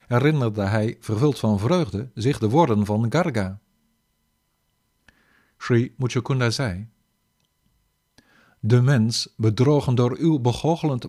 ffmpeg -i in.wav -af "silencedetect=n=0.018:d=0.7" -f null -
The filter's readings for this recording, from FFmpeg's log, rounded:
silence_start: 3.55
silence_end: 5.09 | silence_duration: 1.53
silence_start: 6.85
silence_end: 8.18 | silence_duration: 1.33